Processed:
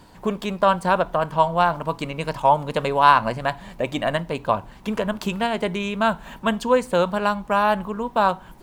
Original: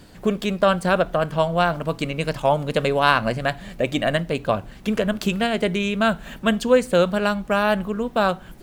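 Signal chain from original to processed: bell 950 Hz +13 dB 0.47 oct; gain -3.5 dB

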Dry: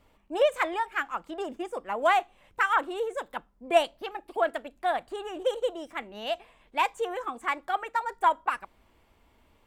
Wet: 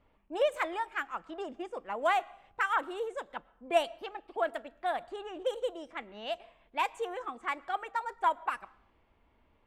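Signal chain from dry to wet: low-pass opened by the level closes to 2700 Hz, open at -24.5 dBFS; on a send: reverb RT60 0.70 s, pre-delay 70 ms, DRR 23.5 dB; on the sum: gain -5 dB

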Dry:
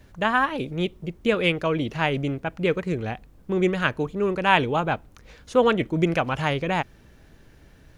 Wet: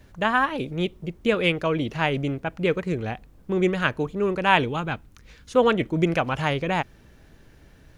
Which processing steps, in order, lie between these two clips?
4.68–5.56 bell 640 Hz -8.5 dB 1.5 oct

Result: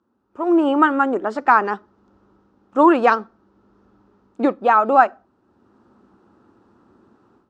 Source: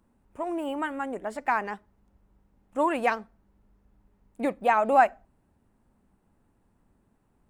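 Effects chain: bell 2400 Hz -5 dB 1.2 oct; AGC gain up to 16.5 dB; speaker cabinet 150–5500 Hz, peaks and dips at 160 Hz -9 dB, 350 Hz +7 dB, 650 Hz -4 dB, 1300 Hz +9 dB, 2100 Hz -6 dB; gain -1.5 dB

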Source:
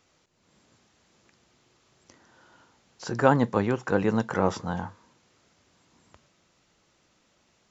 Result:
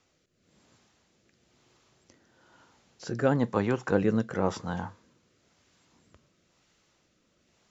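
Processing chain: rotary speaker horn 1 Hz

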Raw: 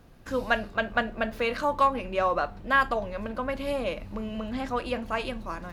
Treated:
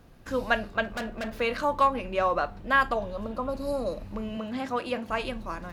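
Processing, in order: 0.84–1.38 overloaded stage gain 29.5 dB; 3.03–4.02 spectral repair 1400–3800 Hz both; 4.37–5.1 HPF 130 Hz 12 dB/oct

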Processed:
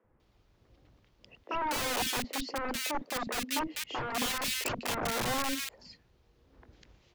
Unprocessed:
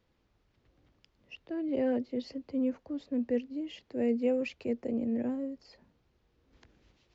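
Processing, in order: 1.39–3.7 HPF 180 Hz 24 dB/oct; wrapped overs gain 32 dB; three bands offset in time mids, lows, highs 40/200 ms, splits 260/1800 Hz; gain +6 dB

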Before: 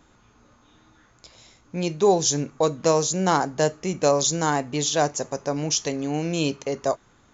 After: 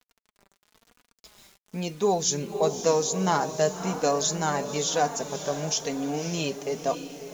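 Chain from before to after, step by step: diffused feedback echo 0.563 s, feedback 47%, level -10 dB; requantised 8-bit, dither none; flange 1 Hz, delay 4 ms, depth 1.2 ms, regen +27%

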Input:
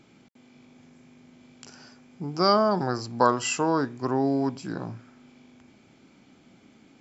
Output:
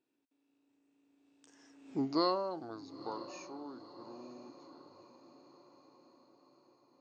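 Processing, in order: Doppler pass-by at 1.97, 40 m/s, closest 3 m; resonant low shelf 230 Hz -6 dB, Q 3; on a send: diffused feedback echo 0.962 s, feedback 54%, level -15 dB

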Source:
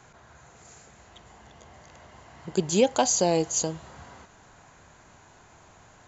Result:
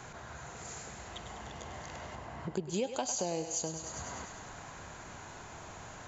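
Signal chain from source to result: 2.15–2.74 high shelf 2700 Hz -11.5 dB; on a send: thinning echo 0.1 s, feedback 63%, high-pass 460 Hz, level -10 dB; on the sum: compressor 3:1, threshold -44 dBFS, peak gain reduction 20.5 dB; gain +6 dB

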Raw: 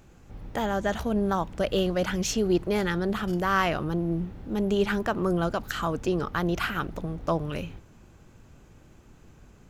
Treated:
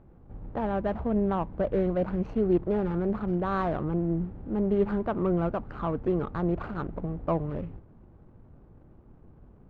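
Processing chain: median filter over 25 samples; LPF 1600 Hz 12 dB/oct

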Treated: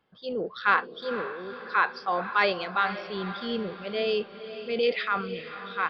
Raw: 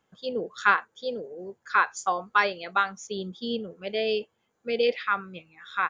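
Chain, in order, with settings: downsampling 11025 Hz; transient shaper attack -4 dB, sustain +6 dB; diffused feedback echo 0.49 s, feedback 48%, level -12 dB

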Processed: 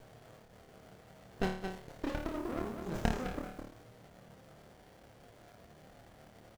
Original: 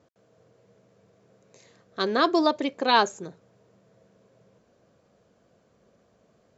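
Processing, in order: slices in reverse order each 0.113 s, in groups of 6; bell 770 Hz +12 dB 0.28 oct; in parallel at -7 dB: soft clip -18 dBFS, distortion -9 dB; on the sum: treble ducked by the level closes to 440 Hz, closed at -15.5 dBFS; echo 0.208 s -12.5 dB; compressor 4:1, threshold -33 dBFS, peak gain reduction 15.5 dB; requantised 10-bit, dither none; bell 340 Hz -12 dB 2 oct; on a send: flutter echo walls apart 4.6 m, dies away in 0.54 s; on the sum: running maximum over 33 samples; gain +4.5 dB

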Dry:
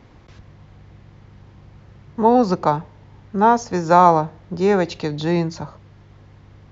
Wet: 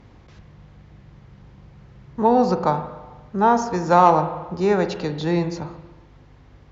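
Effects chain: added harmonics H 3 -22 dB, 5 -31 dB, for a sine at -1 dBFS; spring tank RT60 1.2 s, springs 38/46 ms, chirp 65 ms, DRR 8.5 dB; hum 50 Hz, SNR 30 dB; gain -1.5 dB

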